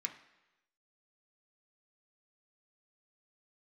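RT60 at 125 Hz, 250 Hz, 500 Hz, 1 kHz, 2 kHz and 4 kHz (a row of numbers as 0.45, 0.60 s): 0.90, 0.90, 1.0, 1.0, 1.0, 1.0 s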